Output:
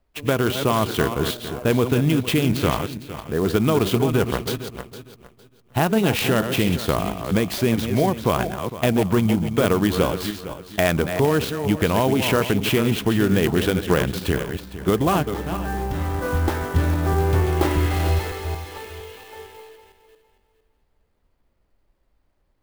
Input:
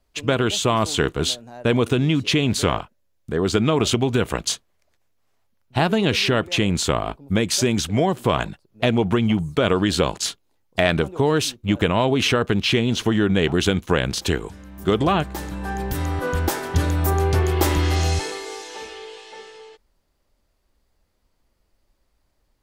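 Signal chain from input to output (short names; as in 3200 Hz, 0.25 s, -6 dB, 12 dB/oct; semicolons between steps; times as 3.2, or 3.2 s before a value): regenerating reverse delay 0.229 s, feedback 48%, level -8 dB; air absorption 160 m; clock jitter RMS 0.031 ms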